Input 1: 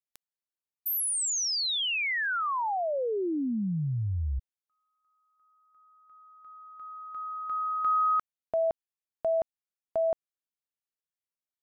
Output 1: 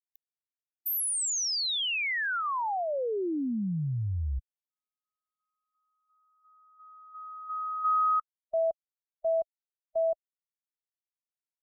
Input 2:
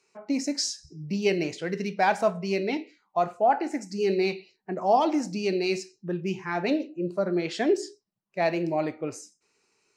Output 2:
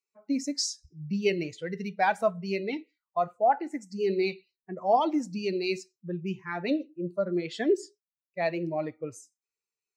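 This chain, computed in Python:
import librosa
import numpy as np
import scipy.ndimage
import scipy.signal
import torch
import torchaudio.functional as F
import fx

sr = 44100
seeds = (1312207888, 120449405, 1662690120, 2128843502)

y = fx.bin_expand(x, sr, power=1.5)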